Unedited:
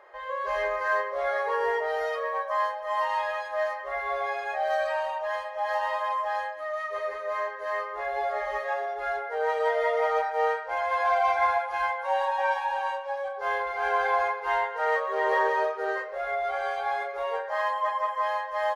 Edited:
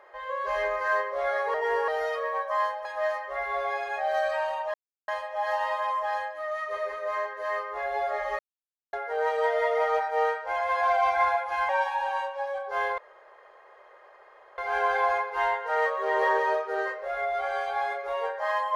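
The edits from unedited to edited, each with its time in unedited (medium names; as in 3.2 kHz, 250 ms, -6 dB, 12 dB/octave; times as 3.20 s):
1.54–1.88 s: reverse
2.85–3.41 s: delete
5.30 s: insert silence 0.34 s
8.61–9.15 s: mute
11.91–12.39 s: delete
13.68 s: insert room tone 1.60 s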